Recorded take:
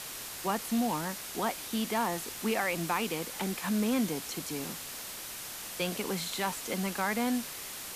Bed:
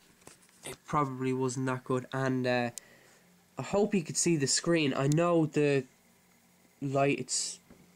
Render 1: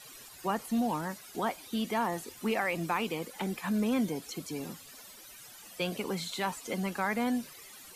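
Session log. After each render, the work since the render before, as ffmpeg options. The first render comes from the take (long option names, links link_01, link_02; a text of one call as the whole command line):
ffmpeg -i in.wav -af "afftdn=noise_reduction=15:noise_floor=-42" out.wav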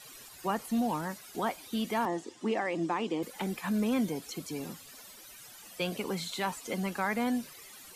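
ffmpeg -i in.wav -filter_complex "[0:a]asettb=1/sr,asplit=3[link_01][link_02][link_03];[link_01]atrim=end=2.054[link_04];[link_02]atrim=start=2.05:end=3.23,asetpts=PTS-STARTPTS,afade=type=in:duration=0.004:curve=qsin,afade=type=out:start_time=1.176:duration=0.004:curve=qsin,highpass=170,equalizer=frequency=320:width_type=q:width=4:gain=8,equalizer=frequency=1400:width_type=q:width=4:gain=-7,equalizer=frequency=2400:width_type=q:width=4:gain=-8,equalizer=frequency=4200:width_type=q:width=4:gain=-6,equalizer=frequency=6000:width_type=q:width=4:gain=-3,lowpass=frequency=7200:width=0.5412,lowpass=frequency=7200:width=1.3066[link_05];[link_03]atrim=start=3.226[link_06];[link_04][link_05]acrossfade=duration=0.004:curve1=hsin:curve2=qsin[link_07];[link_07][link_06]acrossfade=duration=0.004:curve1=qsin:curve2=hsin" out.wav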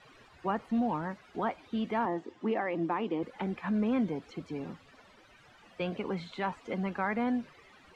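ffmpeg -i in.wav -af "lowpass=2200,equalizer=frequency=77:width_type=o:width=0.65:gain=6" out.wav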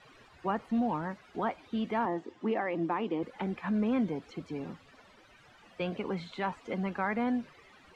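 ffmpeg -i in.wav -af anull out.wav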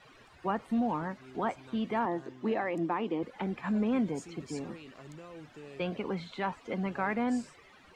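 ffmpeg -i in.wav -i bed.wav -filter_complex "[1:a]volume=-21.5dB[link_01];[0:a][link_01]amix=inputs=2:normalize=0" out.wav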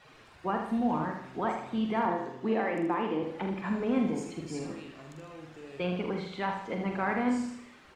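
ffmpeg -i in.wav -filter_complex "[0:a]asplit=2[link_01][link_02];[link_02]adelay=45,volume=-6.5dB[link_03];[link_01][link_03]amix=inputs=2:normalize=0,aecho=1:1:78|156|234|312|390:0.473|0.213|0.0958|0.0431|0.0194" out.wav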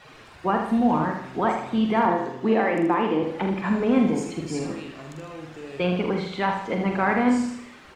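ffmpeg -i in.wav -af "volume=8dB" out.wav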